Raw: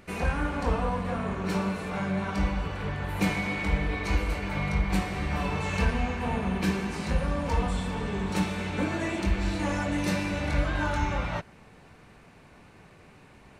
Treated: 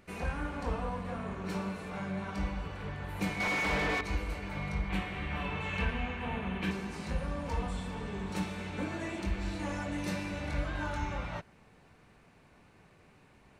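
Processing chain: 3.40–4.01 s: overdrive pedal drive 29 dB, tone 2.1 kHz, clips at -14.5 dBFS; 4.89–6.71 s: FFT filter 720 Hz 0 dB, 3.2 kHz +6 dB, 4.8 kHz -7 dB; trim -7.5 dB

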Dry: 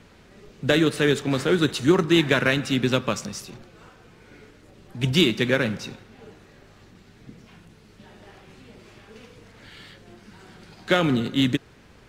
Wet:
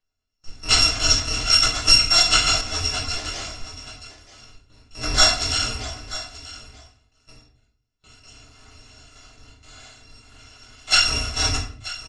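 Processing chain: bit-reversed sample order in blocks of 256 samples; steep low-pass 6.9 kHz 36 dB/octave; gate with hold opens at -44 dBFS; in parallel at 0 dB: level held to a coarse grid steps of 24 dB; on the sum: spectral noise reduction 12 dB; delay 932 ms -16 dB; simulated room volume 55 m³, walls mixed, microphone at 1.1 m; 2.61–3.25 s: three-phase chorus

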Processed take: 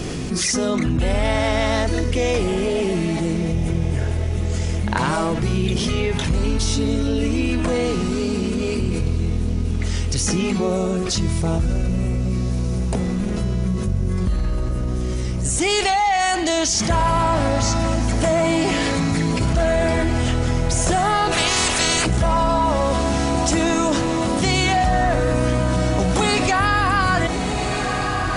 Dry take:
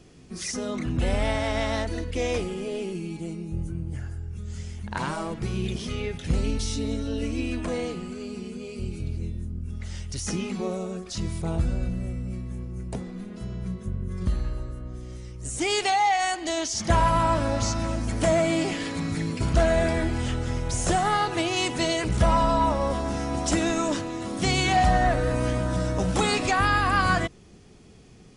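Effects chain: 21.31–22.05 s: spectral peaks clipped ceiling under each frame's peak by 22 dB; echo that smears into a reverb 1411 ms, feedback 55%, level -15.5 dB; level flattener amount 70%

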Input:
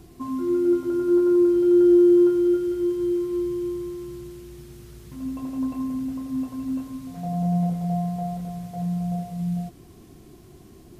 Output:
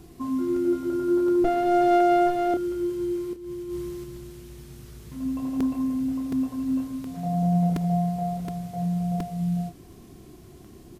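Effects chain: 1.44–2.54 s: comb filter that takes the minimum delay 7.7 ms; 3.33–4.04 s: compressor with a negative ratio -29 dBFS, ratio -0.5; doubling 30 ms -8 dB; crackling interface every 0.72 s, samples 128, repeat, from 0.56 s

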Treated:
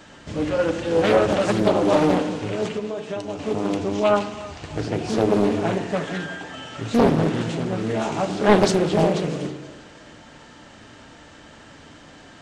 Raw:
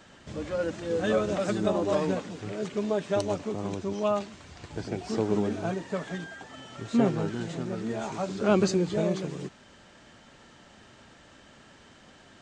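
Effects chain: dynamic bell 2.8 kHz, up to +6 dB, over -59 dBFS, Q 3.6; 2.70–3.39 s: compression 16:1, threshold -33 dBFS, peak gain reduction 12.5 dB; thinning echo 322 ms, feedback 41%, high-pass 420 Hz, level -16 dB; FDN reverb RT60 1.1 s, low-frequency decay 1×, high-frequency decay 0.3×, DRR 6 dB; loudspeaker Doppler distortion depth 0.78 ms; trim +7 dB

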